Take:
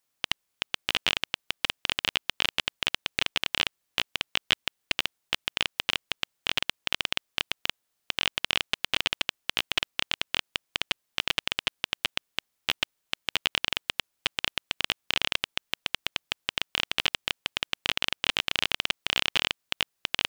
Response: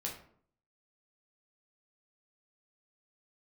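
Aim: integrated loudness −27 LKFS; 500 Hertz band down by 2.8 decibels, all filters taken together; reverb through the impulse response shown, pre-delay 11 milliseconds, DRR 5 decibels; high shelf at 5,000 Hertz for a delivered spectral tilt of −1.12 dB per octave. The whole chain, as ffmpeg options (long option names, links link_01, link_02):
-filter_complex "[0:a]equalizer=frequency=500:width_type=o:gain=-3.5,highshelf=frequency=5000:gain=-5,asplit=2[link_01][link_02];[1:a]atrim=start_sample=2205,adelay=11[link_03];[link_02][link_03]afir=irnorm=-1:irlink=0,volume=-5.5dB[link_04];[link_01][link_04]amix=inputs=2:normalize=0,volume=2.5dB"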